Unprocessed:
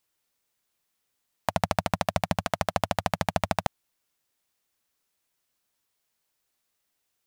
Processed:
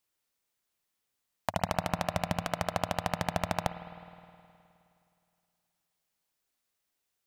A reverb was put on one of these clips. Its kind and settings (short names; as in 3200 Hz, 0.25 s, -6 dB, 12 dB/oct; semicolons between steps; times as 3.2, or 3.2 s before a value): spring tank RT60 2.6 s, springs 52 ms, chirp 70 ms, DRR 10 dB; gain -4.5 dB